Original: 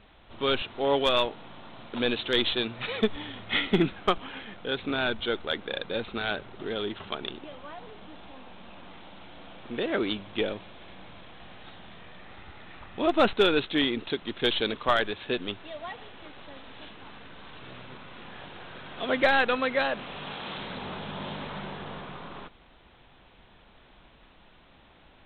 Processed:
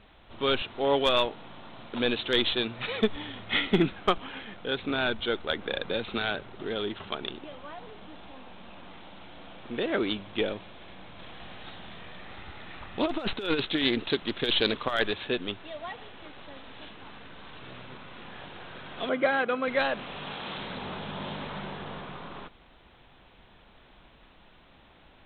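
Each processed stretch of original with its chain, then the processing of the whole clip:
5.49–6.35 bell 5500 Hz -7.5 dB 0.35 oct + three-band squash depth 100%
11.19–15.28 high shelf 4700 Hz +5 dB + negative-ratio compressor -25 dBFS, ratio -0.5 + Doppler distortion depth 0.12 ms
19.09–19.68 HPF 130 Hz + air absorption 380 m + notch comb 900 Hz
whole clip: dry

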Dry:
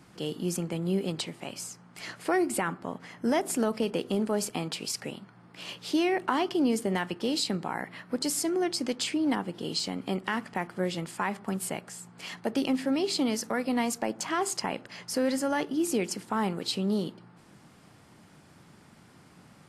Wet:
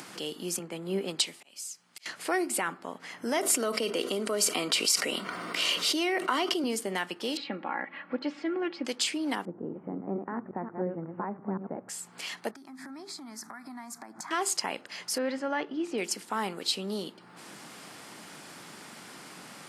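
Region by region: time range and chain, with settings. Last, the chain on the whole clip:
0.59–2.06 auto swell 0.353 s + three-band expander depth 70%
3.37–6.64 Bessel high-pass 240 Hz + notch comb 840 Hz + fast leveller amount 70%
7.37–8.85 LPF 2700 Hz 24 dB/oct + comb 3.6 ms, depth 66%
9.45–11.89 reverse delay 0.177 s, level -6 dB + Gaussian blur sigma 7.6 samples + low shelf 230 Hz +10.5 dB
12.51–14.31 high shelf 3500 Hz -9.5 dB + compressor 8:1, threshold -38 dBFS + fixed phaser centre 1200 Hz, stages 4
15.18–15.98 LPF 2600 Hz + mismatched tape noise reduction decoder only
whole clip: HPF 250 Hz 12 dB/oct; tilt shelf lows -3.5 dB, about 1400 Hz; upward compressor, threshold -35 dBFS

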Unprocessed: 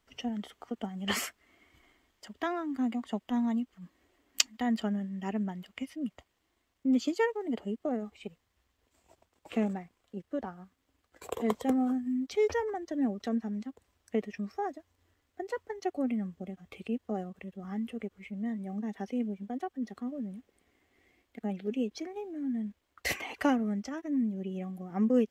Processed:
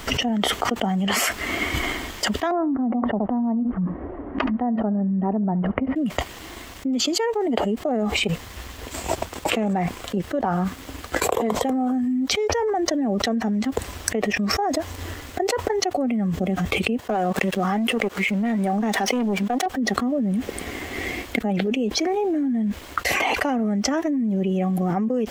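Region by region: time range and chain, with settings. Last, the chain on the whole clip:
2.51–5.96 Bessel low-pass 810 Hz, order 4 + echo 72 ms -21.5 dB
17–19.66 HPF 440 Hz 6 dB/oct + sample leveller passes 2
whole clip: dynamic EQ 720 Hz, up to +6 dB, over -47 dBFS, Q 1.3; fast leveller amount 100%; gain -1.5 dB

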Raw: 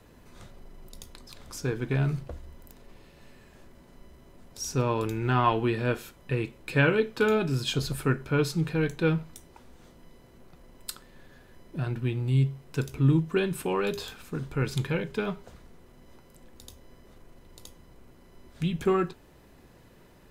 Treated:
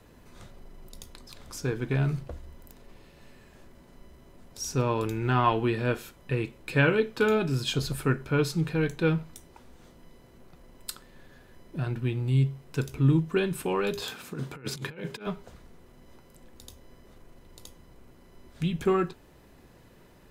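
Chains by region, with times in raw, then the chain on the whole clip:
14.02–15.27 HPF 140 Hz + negative-ratio compressor -35 dBFS, ratio -0.5
whole clip: dry

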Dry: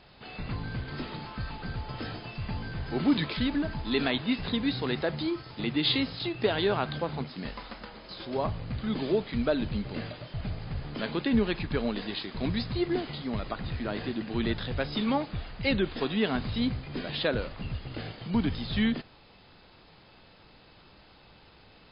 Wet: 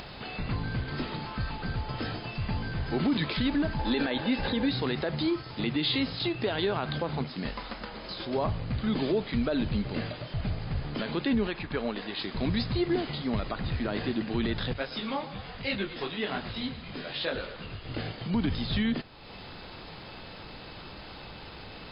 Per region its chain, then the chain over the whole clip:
3.79–4.69 comb 3.4 ms, depth 33% + small resonant body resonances 510/810/1600 Hz, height 12 dB, ringing for 35 ms
11.47–12.19 LPF 2700 Hz 6 dB/oct + low shelf 330 Hz -9.5 dB
14.73–17.89 low shelf 360 Hz -9 dB + frequency-shifting echo 0.115 s, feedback 63%, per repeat -33 Hz, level -14 dB + detuned doubles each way 40 cents
whole clip: limiter -22 dBFS; upward compressor, threshold -37 dBFS; gain +3 dB

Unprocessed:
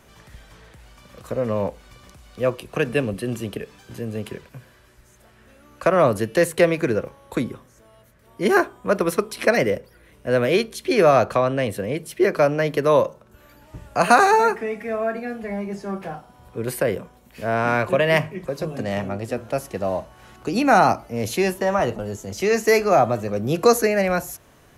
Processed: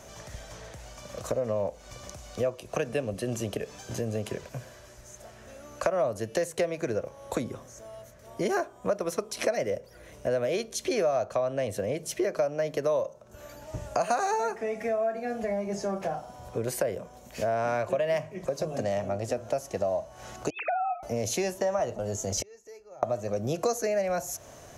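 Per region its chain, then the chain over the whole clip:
20.5–21.03 sine-wave speech + steep high-pass 720 Hz + compressor 3:1, threshold -27 dBFS
22.37–23.03 low shelf 170 Hz +8.5 dB + comb 2.2 ms, depth 63% + flipped gate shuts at -19 dBFS, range -39 dB
whole clip: fifteen-band EQ 100 Hz +4 dB, 630 Hz +11 dB, 6300 Hz +12 dB; compressor 4:1, threshold -28 dBFS

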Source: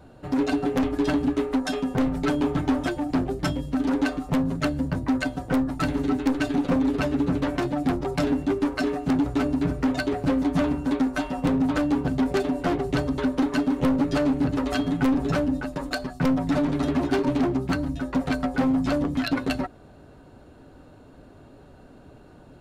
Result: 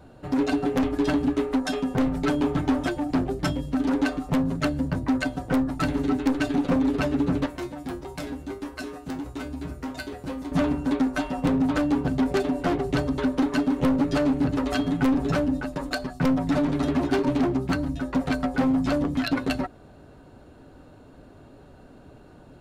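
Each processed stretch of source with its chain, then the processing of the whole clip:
7.46–10.52 high shelf 6600 Hz +10 dB + resonator 72 Hz, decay 0.25 s, harmonics odd, mix 80%
whole clip: dry

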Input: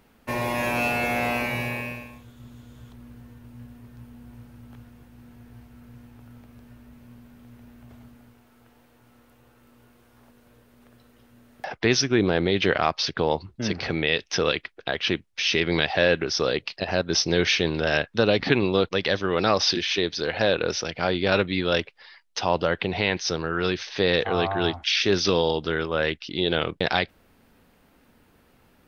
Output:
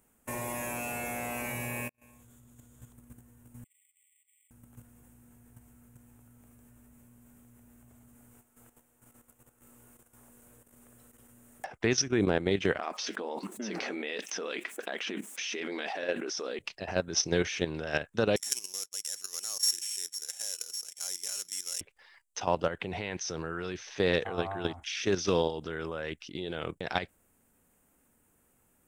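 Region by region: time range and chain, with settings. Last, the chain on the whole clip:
1.89–2.58 compressor 12:1, threshold -42 dBFS + flipped gate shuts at -30 dBFS, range -32 dB
3.64–4.51 brick-wall FIR high-pass 1900 Hz + careless resampling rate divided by 8×, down filtered, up hold
12.79–16.59 flange 1.4 Hz, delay 0.9 ms, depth 6.8 ms, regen -52% + brick-wall FIR high-pass 190 Hz + fast leveller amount 70%
18.36–21.81 sample sorter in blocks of 8 samples + band-pass 5700 Hz, Q 1.6
whole clip: resonant high shelf 6000 Hz +10.5 dB, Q 3; level quantiser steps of 11 dB; gain -3 dB

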